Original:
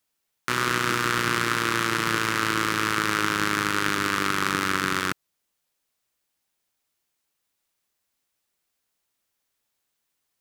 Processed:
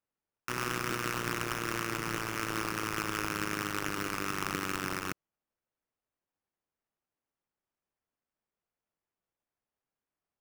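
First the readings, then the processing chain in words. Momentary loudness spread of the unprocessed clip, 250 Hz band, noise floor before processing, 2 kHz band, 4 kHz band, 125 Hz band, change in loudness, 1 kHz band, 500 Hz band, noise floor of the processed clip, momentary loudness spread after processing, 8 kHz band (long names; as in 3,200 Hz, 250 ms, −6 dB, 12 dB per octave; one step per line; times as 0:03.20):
3 LU, −8.5 dB, −79 dBFS, −11.5 dB, −11.5 dB, −7.0 dB, −10.0 dB, −10.5 dB, −7.5 dB, below −85 dBFS, 3 LU, −8.0 dB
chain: running median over 15 samples
sample-rate reduction 4,000 Hz, jitter 20%
level −7 dB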